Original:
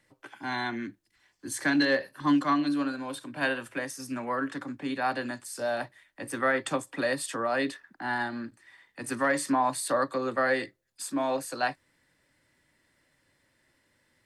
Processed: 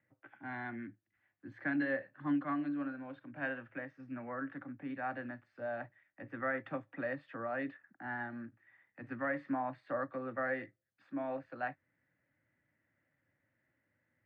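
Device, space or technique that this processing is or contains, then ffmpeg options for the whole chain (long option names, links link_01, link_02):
bass cabinet: -af "highpass=87,equalizer=frequency=110:width_type=q:width=4:gain=6,equalizer=frequency=410:width_type=q:width=4:gain=-8,equalizer=frequency=1000:width_type=q:width=4:gain=-9,lowpass=frequency=2100:width=0.5412,lowpass=frequency=2100:width=1.3066,volume=-8dB"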